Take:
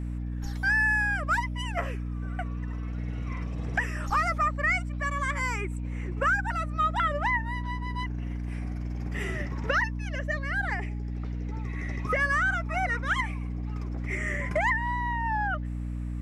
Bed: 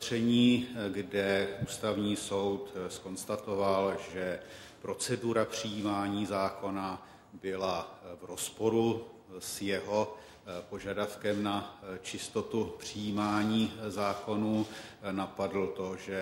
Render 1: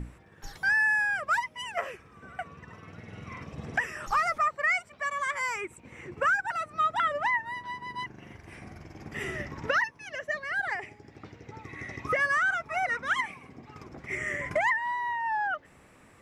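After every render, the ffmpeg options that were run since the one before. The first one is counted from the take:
-af "bandreject=f=60:t=h:w=6,bandreject=f=120:t=h:w=6,bandreject=f=180:t=h:w=6,bandreject=f=240:t=h:w=6,bandreject=f=300:t=h:w=6"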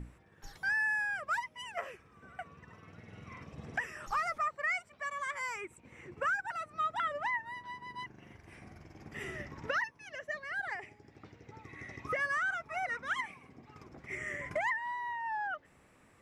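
-af "volume=-7dB"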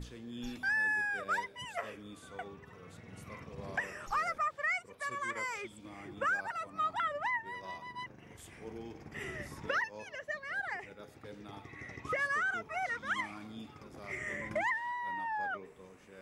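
-filter_complex "[1:a]volume=-18dB[a];[0:a][a]amix=inputs=2:normalize=0"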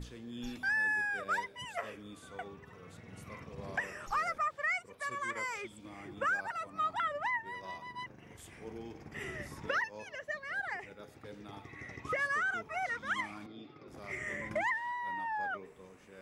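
-filter_complex "[0:a]asettb=1/sr,asplit=3[a][b][c];[a]atrim=end=13.464[d];[b]atrim=start=13.46:end=13.88,asetpts=PTS-STARTPTS,afade=t=in:d=0.004:c=qsin,afade=t=out:st=0.416:d=0.004:c=qsin,highpass=f=130:w=0.5412,highpass=f=130:w=1.3066,equalizer=f=210:t=q:w=4:g=-9,equalizer=f=340:t=q:w=4:g=6,equalizer=f=930:t=q:w=4:g=-9,equalizer=f=1.6k:t=q:w=4:g=-6,equalizer=f=2.9k:t=q:w=4:g=-6,lowpass=f=4.4k:w=0.5412,lowpass=f=4.4k:w=1.3066[e];[c]atrim=start=13.876[f];[d][e]acrossfade=d=0.004:c1=hsin:c2=qsin[g];[g][f]acrossfade=d=0.004:c1=qsin:c2=hsin"

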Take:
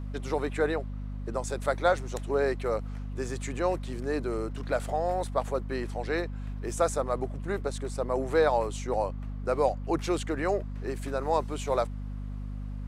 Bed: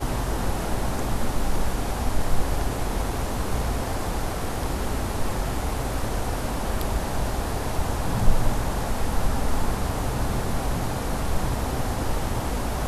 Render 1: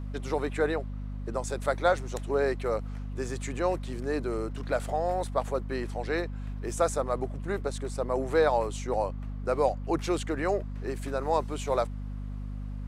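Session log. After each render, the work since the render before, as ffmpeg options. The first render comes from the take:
-af anull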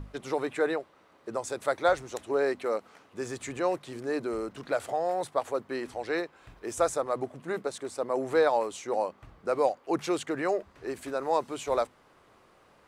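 -af "bandreject=f=50:t=h:w=6,bandreject=f=100:t=h:w=6,bandreject=f=150:t=h:w=6,bandreject=f=200:t=h:w=6,bandreject=f=250:t=h:w=6"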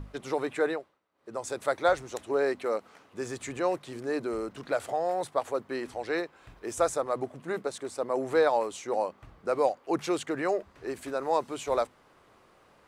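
-filter_complex "[0:a]asplit=3[a][b][c];[a]atrim=end=1,asetpts=PTS-STARTPTS,afade=t=out:st=0.66:d=0.34:silence=0.1[d];[b]atrim=start=1:end=1.14,asetpts=PTS-STARTPTS,volume=-20dB[e];[c]atrim=start=1.14,asetpts=PTS-STARTPTS,afade=t=in:d=0.34:silence=0.1[f];[d][e][f]concat=n=3:v=0:a=1"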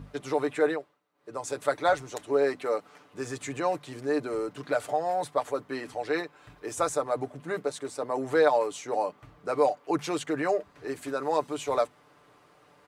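-af "highpass=57,aecho=1:1:6.8:0.56"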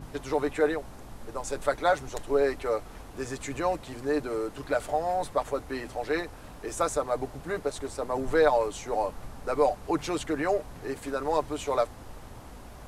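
-filter_complex "[1:a]volume=-19dB[a];[0:a][a]amix=inputs=2:normalize=0"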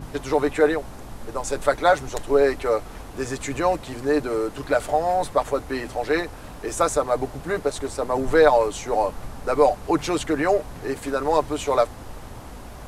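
-af "volume=6.5dB"

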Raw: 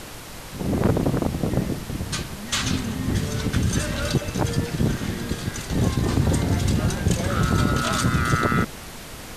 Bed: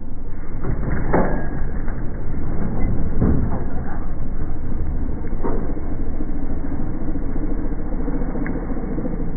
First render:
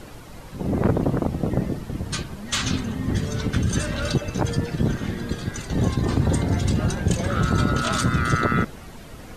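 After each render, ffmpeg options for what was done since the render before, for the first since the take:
-af "afftdn=nr=10:nf=-38"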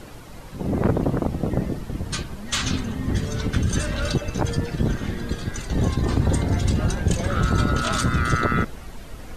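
-af "asubboost=boost=2:cutoff=75"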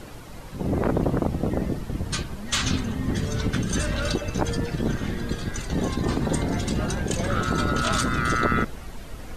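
-af "afftfilt=real='re*lt(hypot(re,im),0.794)':imag='im*lt(hypot(re,im),0.794)':win_size=1024:overlap=0.75"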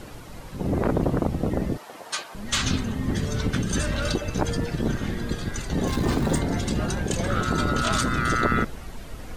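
-filter_complex "[0:a]asettb=1/sr,asplit=3[a][b][c];[a]atrim=end=1.774[d];[b]atrim=start=1.77:end=2.35,asetpts=PTS-STARTPTS,afade=t=in:d=0.004:c=qsin,afade=t=out:st=0.576:d=0.004:c=qsin,highpass=f=720:t=q:w=1.6[e];[c]atrim=start=2.346[f];[d][e]acrossfade=d=0.004:c1=hsin:c2=qsin[g];[g][f]acrossfade=d=0.004:c1=qsin:c2=hsin,asettb=1/sr,asplit=3[h][i][j];[h]atrim=end=5.874[k];[i]atrim=start=5.87:end=6.39,asetpts=PTS-STARTPTS,afade=t=in:d=0.004:c=qsin,afade=t=out:st=0.516:d=0.004:c=qsin,aeval=exprs='val(0)+0.5*0.0282*sgn(val(0))':c=same[l];[j]atrim=start=6.386[m];[k][l]acrossfade=d=0.004:c1=hsin:c2=qsin[n];[n][m]acrossfade=d=0.004:c1=qsin:c2=hsin"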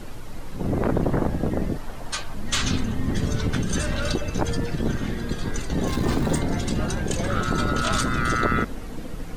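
-filter_complex "[1:a]volume=-12.5dB[a];[0:a][a]amix=inputs=2:normalize=0"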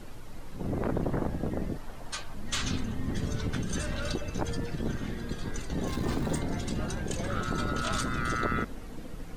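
-af "volume=-7.5dB"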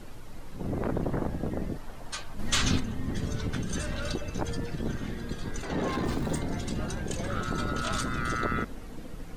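-filter_complex "[0:a]asettb=1/sr,asplit=3[a][b][c];[a]atrim=end=2.394[d];[b]atrim=start=2.39:end=2.8,asetpts=PTS-STARTPTS,afade=t=in:d=0.004:c=qsin,afade=t=out:st=0.406:d=0.004:c=qsin,acontrast=38[e];[c]atrim=start=2.796[f];[d][e]acrossfade=d=0.004:c1=hsin:c2=qsin[g];[g][f]acrossfade=d=0.004:c1=qsin:c2=hsin,asettb=1/sr,asplit=3[h][i][j];[h]atrim=end=5.634[k];[i]atrim=start=5.63:end=6.05,asetpts=PTS-STARTPTS,afade=t=in:d=0.004:c=qsin,afade=t=out:st=0.416:d=0.004:c=qsin,asplit=2[l][m];[m]highpass=f=720:p=1,volume=21dB,asoftclip=type=tanh:threshold=-19dB[n];[l][n]amix=inputs=2:normalize=0,lowpass=f=1.2k:p=1,volume=-6dB[o];[j]atrim=start=6.046[p];[k][o]acrossfade=d=0.004:c1=hsin:c2=qsin[q];[q][p]acrossfade=d=0.004:c1=qsin:c2=hsin"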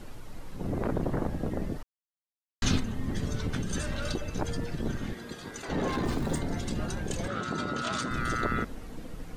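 -filter_complex "[0:a]asettb=1/sr,asplit=3[a][b][c];[a]atrim=end=5.134[d];[b]atrim=start=5.13:end=5.69,asetpts=PTS-STARTPTS,afade=t=in:d=0.004:c=qsin,afade=t=out:st=0.556:d=0.004:c=qsin,highpass=f=330:p=1[e];[c]atrim=start=5.686[f];[d][e]acrossfade=d=0.004:c1=hsin:c2=qsin[g];[g][f]acrossfade=d=0.004:c1=qsin:c2=hsin,asettb=1/sr,asplit=3[h][i][j];[h]atrim=end=7.284[k];[i]atrim=start=7.28:end=8.11,asetpts=PTS-STARTPTS,afade=t=in:d=0.004:c=qsin,afade=t=out:st=0.826:d=0.004:c=qsin,highpass=140,lowpass=7.3k[l];[j]atrim=start=8.106[m];[k][l]acrossfade=d=0.004:c1=hsin:c2=qsin[n];[n][m]acrossfade=d=0.004:c1=qsin:c2=hsin,asplit=3[o][p][q];[o]atrim=end=1.83,asetpts=PTS-STARTPTS,afade=t=out:st=1.826:d=0.004:c=hsin[r];[p]atrim=start=1.83:end=2.62,asetpts=PTS-STARTPTS,volume=0[s];[q]atrim=start=2.62,asetpts=PTS-STARTPTS,afade=t=in:d=0.004:c=hsin[t];[r][s][t]concat=n=3:v=0:a=1"

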